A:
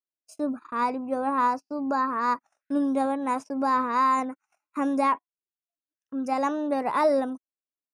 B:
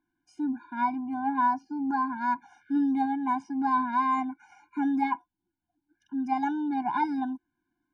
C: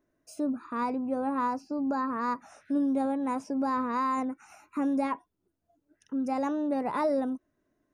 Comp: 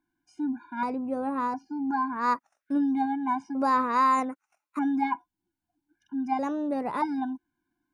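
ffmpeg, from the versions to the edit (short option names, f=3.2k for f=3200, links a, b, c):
-filter_complex "[2:a]asplit=2[a][b];[0:a]asplit=2[c][d];[1:a]asplit=5[e][f][g][h][i];[e]atrim=end=0.832[j];[a]atrim=start=0.828:end=1.542[k];[f]atrim=start=1.538:end=2.27[l];[c]atrim=start=2.11:end=2.82[m];[g]atrim=start=2.66:end=3.552[n];[d]atrim=start=3.548:end=4.792[o];[h]atrim=start=4.788:end=6.392[p];[b]atrim=start=6.388:end=7.022[q];[i]atrim=start=7.018[r];[j][k]acrossfade=d=0.004:c1=hsin:c2=hsin[s];[s][l]acrossfade=d=0.004:c1=hsin:c2=hsin[t];[t][m]acrossfade=d=0.16:c1=tri:c2=tri[u];[u][n]acrossfade=d=0.16:c1=tri:c2=tri[v];[v][o]acrossfade=d=0.004:c1=hsin:c2=hsin[w];[w][p]acrossfade=d=0.004:c1=hsin:c2=hsin[x];[x][q]acrossfade=d=0.004:c1=hsin:c2=hsin[y];[y][r]acrossfade=d=0.004:c1=hsin:c2=hsin"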